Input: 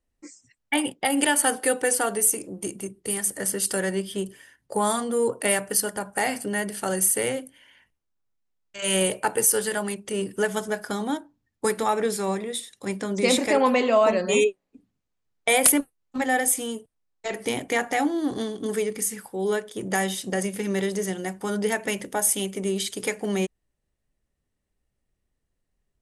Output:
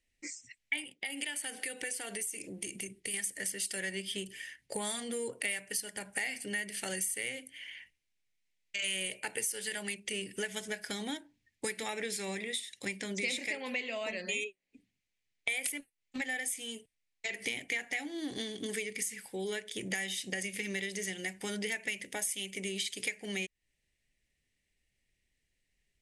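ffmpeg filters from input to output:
-filter_complex "[0:a]asettb=1/sr,asplit=3[s0][s1][s2];[s0]atrim=end=0.844[s3];[s1]atrim=start=0.84:end=3.14,asetpts=PTS-STARTPTS,afade=t=in:d=0.004:c=qsin,afade=t=out:st=2.296:d=0.004:c=qsin,acompressor=threshold=0.0178:ratio=2.5:attack=3.2:release=140:knee=1:detection=peak[s4];[s2]atrim=start=3.136[s5];[s3][s4]acrossfade=d=0.004:c1=hsin:c2=qsin[s6];[s6][s5]acrossfade=d=0.004:c1=qsin:c2=hsin,asplit=3[s7][s8][s9];[s7]atrim=end=13.552[s10];[s8]atrim=start=13.548:end=17.422,asetpts=PTS-STARTPTS,volume=0.668[s11];[s9]atrim=start=17.418[s12];[s10][s11]acrossfade=d=0.004:c1=hsin:c2=hsin[s13];[s13][s12]acrossfade=d=0.004:c1=hsin:c2=hsin,lowpass=10000,highshelf=f=1600:t=q:w=3:g=9.5,acompressor=threshold=0.0282:ratio=4,volume=0.596"

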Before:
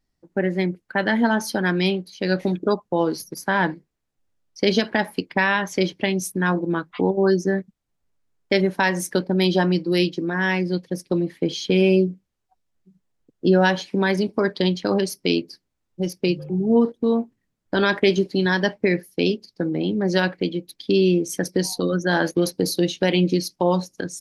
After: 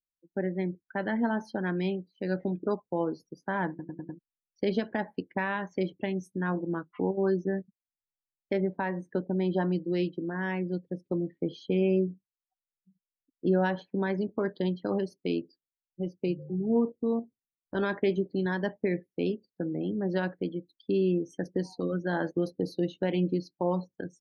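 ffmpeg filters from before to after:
-filter_complex "[0:a]asettb=1/sr,asplit=3[s0][s1][s2];[s0]atrim=end=8.534[s3];[s1]atrim=start=8.53:end=9.54,asetpts=PTS-STARTPTS,afade=t=in:d=0.004:c=qsin,afade=t=out:st=1.006:d=0.004:c=qsin,highshelf=f=2800:g=-9.5[s4];[s2]atrim=start=9.536[s5];[s3][s4]acrossfade=d=0.004:c1=hsin:c2=qsin[s6];[s6][s5]acrossfade=d=0.004:c1=qsin:c2=hsin,asettb=1/sr,asplit=3[s7][s8][s9];[s7]atrim=end=17.194[s10];[s8]atrim=start=17.19:end=17.75,asetpts=PTS-STARTPTS,afade=t=in:d=0.004:c=qsin,afade=t=out:st=0.556:d=0.004:c=qsin,acompressor=threshold=0.0562:ratio=6:attack=3.2:release=140:knee=1:detection=peak[s11];[s9]atrim=start=17.746[s12];[s10][s11]acrossfade=d=0.004:c1=hsin:c2=qsin[s13];[s13][s12]acrossfade=d=0.004:c1=qsin:c2=hsin,asplit=6[s14][s15][s16][s17][s18][s19];[s14]atrim=end=3.792[s20];[s15]atrim=start=3.688:end=3.792[s21];[s16]atrim=start=3.688:end=3.792[s22];[s17]atrim=start=3.688:end=3.792[s23];[s18]atrim=start=3.688:end=3.792[s24];[s19]atrim=start=4.188[s25];[s20][s21]acrossfade=d=0.004:c1=hsin:c2=hsin[s26];[s26][s22]acrossfade=d=0.004:c1=hsin:c2=hsin[s27];[s27][s23]acrossfade=d=0.004:c1=hsin:c2=hsin[s28];[s28][s24]acrossfade=d=0.004:c1=hsin:c2=hsin[s29];[s29][s25]acrossfade=d=0.004:c1=hsin:c2=hsin,lowpass=f=3500:p=1,afftdn=nr=23:nf=-38,highshelf=f=2100:g=-9.5,volume=0.398"

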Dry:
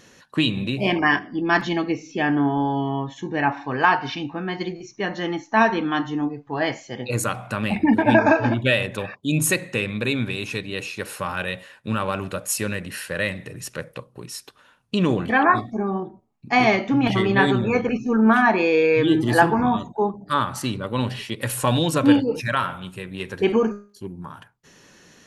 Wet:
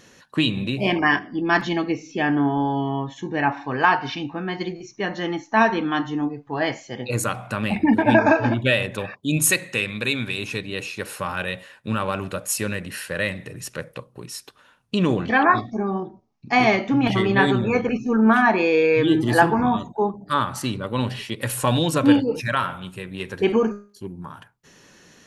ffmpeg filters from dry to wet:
-filter_complex "[0:a]asettb=1/sr,asplit=3[s0][s1][s2];[s0]atrim=end=9.374[s3];[s1]atrim=start=9.37:end=10.38,asetpts=PTS-STARTPTS,afade=t=in:d=0.004:c=qsin,afade=t=out:st=1.006:d=0.004:c=qsin,tiltshelf=f=1200:g=-4[s4];[s2]atrim=start=10.376[s5];[s3][s4]acrossfade=d=0.004:c1=hsin:c2=qsin[s6];[s6][s5]acrossfade=d=0.004:c1=qsin:c2=hsin,asettb=1/sr,asplit=3[s7][s8][s9];[s7]atrim=end=15.224[s10];[s8]atrim=start=15.22:end=16.52,asetpts=PTS-STARTPTS,afade=t=in:d=0.004:c=qsin,afade=t=out:st=1.296:d=0.004:c=qsin,highshelf=f=7500:t=q:w=3:g=-11[s11];[s9]atrim=start=16.516[s12];[s10][s11]acrossfade=d=0.004:c1=hsin:c2=qsin[s13];[s13][s12]acrossfade=d=0.004:c1=qsin:c2=hsin"

